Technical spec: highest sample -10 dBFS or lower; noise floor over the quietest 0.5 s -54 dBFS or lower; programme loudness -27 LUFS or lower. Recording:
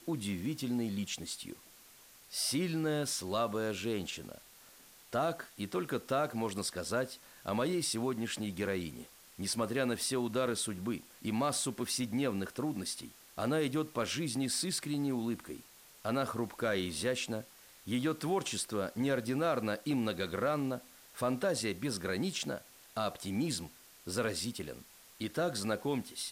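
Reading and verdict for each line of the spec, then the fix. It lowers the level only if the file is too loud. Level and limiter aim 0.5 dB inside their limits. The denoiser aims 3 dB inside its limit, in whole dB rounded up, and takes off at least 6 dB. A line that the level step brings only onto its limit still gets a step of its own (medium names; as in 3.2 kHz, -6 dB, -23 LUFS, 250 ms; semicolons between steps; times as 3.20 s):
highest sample -21.0 dBFS: pass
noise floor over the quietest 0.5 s -58 dBFS: pass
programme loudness -35.0 LUFS: pass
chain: none needed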